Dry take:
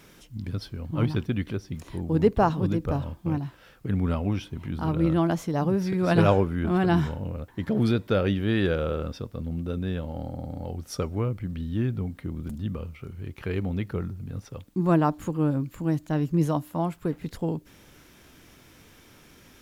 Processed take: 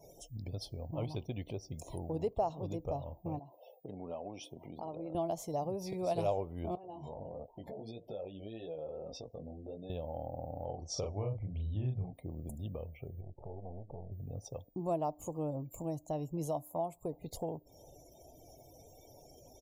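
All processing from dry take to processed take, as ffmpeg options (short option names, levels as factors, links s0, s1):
-filter_complex "[0:a]asettb=1/sr,asplit=3[s0][s1][s2];[s0]atrim=end=3.394[s3];[s1]atrim=start=3.39:end=5.15,asetpts=PTS-STARTPTS,afade=t=in:d=0.004:c=qsin,afade=t=out:st=1.756:d=0.004:c=qsin,highpass=220,acompressor=threshold=0.00501:ratio=1.5:attack=3.2:release=140:knee=1:detection=peak[s4];[s2]atrim=start=5.146[s5];[s3][s4]acrossfade=d=0.004:c1=hsin:c2=qsin[s6];[s6][s5]acrossfade=d=0.004:c1=qsin:c2=hsin,asettb=1/sr,asplit=3[s7][s8][s9];[s7]atrim=end=6.754[s10];[s8]atrim=start=6.75:end=9.9,asetpts=PTS-STARTPTS,afade=t=in:d=0.004:c=qsin,afade=t=out:st=3.146:d=0.004:c=qsin,equalizer=f=98:t=o:w=0.79:g=-9,acompressor=threshold=0.0224:ratio=10:attack=3.2:release=140:knee=1:detection=peak,flanger=delay=17.5:depth=3.7:speed=1.6[s11];[s9]atrim=start=9.896[s12];[s10][s11]acrossfade=d=0.004:c1=hsin:c2=qsin[s13];[s13][s12]acrossfade=d=0.004:c1=qsin:c2=hsin,asettb=1/sr,asplit=3[s14][s15][s16];[s14]atrim=end=10.654[s17];[s15]atrim=start=10.65:end=12.13,asetpts=PTS-STARTPTS,afade=t=in:d=0.004:c=qsin,afade=t=out:st=1.476:d=0.004:c=qsin,lowpass=f=6400:w=0.5412,lowpass=f=6400:w=1.3066,asubboost=boost=7:cutoff=150,asplit=2[s18][s19];[s19]adelay=39,volume=0.708[s20];[s18][s20]amix=inputs=2:normalize=0,atrim=end_sample=65268[s21];[s16]atrim=start=12.126[s22];[s17][s21]acrossfade=d=0.004:c1=hsin:c2=qsin[s23];[s23][s22]acrossfade=d=0.004:c1=qsin:c2=hsin,asettb=1/sr,asplit=3[s24][s25][s26];[s24]atrim=end=13.214[s27];[s25]atrim=start=13.21:end=14.12,asetpts=PTS-STARTPTS,afade=t=in:d=0.004:c=qsin,afade=t=out:st=0.906:d=0.004:c=qsin,aeval=exprs='if(lt(val(0),0),0.251*val(0),val(0))':c=same,lowpass=f=1300:w=0.5412,lowpass=f=1300:w=1.3066,acompressor=threshold=0.0126:ratio=3:attack=3.2:release=140:knee=1:detection=peak[s28];[s26]atrim=start=14.116[s29];[s27][s28]acrossfade=d=0.004:c1=hsin:c2=qsin[s30];[s30][s29]acrossfade=d=0.004:c1=qsin:c2=hsin,firequalizer=gain_entry='entry(140,0);entry(190,-6);entry(660,13);entry(1500,-16);entry(2200,-1);entry(6800,11)':delay=0.05:min_phase=1,afftdn=nr=35:nf=-49,acompressor=threshold=0.01:ratio=2,volume=0.708"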